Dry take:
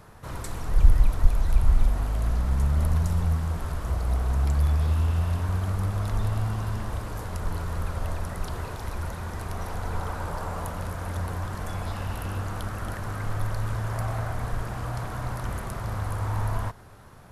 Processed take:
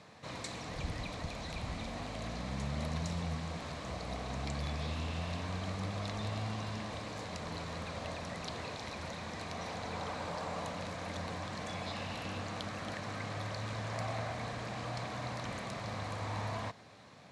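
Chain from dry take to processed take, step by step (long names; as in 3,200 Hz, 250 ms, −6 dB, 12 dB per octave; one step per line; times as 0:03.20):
loudspeaker in its box 190–7,400 Hz, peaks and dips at 380 Hz −8 dB, 920 Hz −5 dB, 1,400 Hz −9 dB, 2,300 Hz +5 dB, 4,000 Hz +7 dB
level −1.5 dB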